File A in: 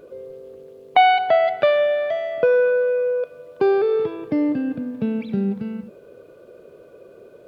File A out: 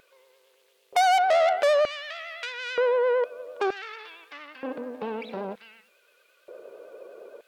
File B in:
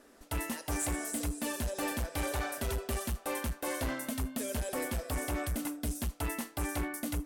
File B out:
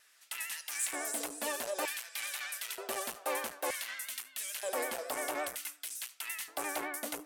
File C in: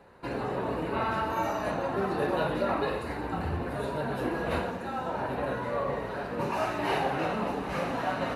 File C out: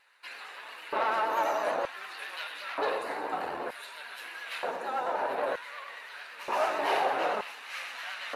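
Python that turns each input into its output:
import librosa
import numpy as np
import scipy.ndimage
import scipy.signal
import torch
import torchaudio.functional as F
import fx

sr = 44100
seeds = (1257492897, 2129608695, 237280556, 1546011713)

y = fx.tube_stage(x, sr, drive_db=23.0, bias=0.5)
y = fx.filter_lfo_highpass(y, sr, shape='square', hz=0.54, low_hz=550.0, high_hz=2200.0, q=1.1)
y = fx.vibrato(y, sr, rate_hz=8.9, depth_cents=56.0)
y = y * 10.0 ** (3.5 / 20.0)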